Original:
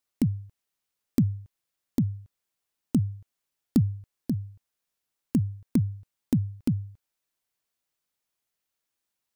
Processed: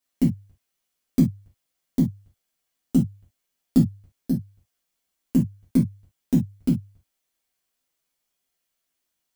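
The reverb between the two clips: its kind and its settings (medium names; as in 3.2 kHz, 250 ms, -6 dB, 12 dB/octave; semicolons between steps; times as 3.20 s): gated-style reverb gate 90 ms falling, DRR -5.5 dB; trim -2.5 dB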